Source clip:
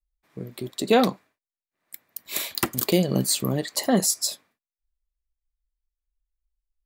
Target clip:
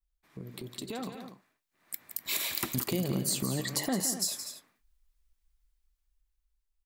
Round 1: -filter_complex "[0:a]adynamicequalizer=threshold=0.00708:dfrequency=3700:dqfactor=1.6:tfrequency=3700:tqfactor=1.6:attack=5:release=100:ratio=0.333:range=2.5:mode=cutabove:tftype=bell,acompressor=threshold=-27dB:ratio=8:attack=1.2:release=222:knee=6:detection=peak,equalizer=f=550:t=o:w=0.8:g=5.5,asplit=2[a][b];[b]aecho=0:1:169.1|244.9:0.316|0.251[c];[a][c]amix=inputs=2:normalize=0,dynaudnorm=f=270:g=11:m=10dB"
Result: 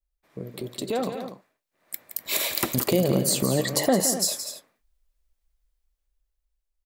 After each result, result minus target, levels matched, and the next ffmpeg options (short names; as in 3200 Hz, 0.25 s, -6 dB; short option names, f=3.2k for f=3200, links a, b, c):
compressor: peak gain reduction -7 dB; 500 Hz band +6.0 dB
-filter_complex "[0:a]adynamicequalizer=threshold=0.00708:dfrequency=3700:dqfactor=1.6:tfrequency=3700:tqfactor=1.6:attack=5:release=100:ratio=0.333:range=2.5:mode=cutabove:tftype=bell,acompressor=threshold=-35dB:ratio=8:attack=1.2:release=222:knee=6:detection=peak,equalizer=f=550:t=o:w=0.8:g=5.5,asplit=2[a][b];[b]aecho=0:1:169.1|244.9:0.316|0.251[c];[a][c]amix=inputs=2:normalize=0,dynaudnorm=f=270:g=11:m=10dB"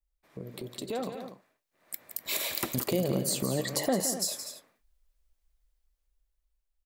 500 Hz band +5.5 dB
-filter_complex "[0:a]adynamicequalizer=threshold=0.00708:dfrequency=3700:dqfactor=1.6:tfrequency=3700:tqfactor=1.6:attack=5:release=100:ratio=0.333:range=2.5:mode=cutabove:tftype=bell,acompressor=threshold=-35dB:ratio=8:attack=1.2:release=222:knee=6:detection=peak,equalizer=f=550:t=o:w=0.8:g=-4.5,asplit=2[a][b];[b]aecho=0:1:169.1|244.9:0.316|0.251[c];[a][c]amix=inputs=2:normalize=0,dynaudnorm=f=270:g=11:m=10dB"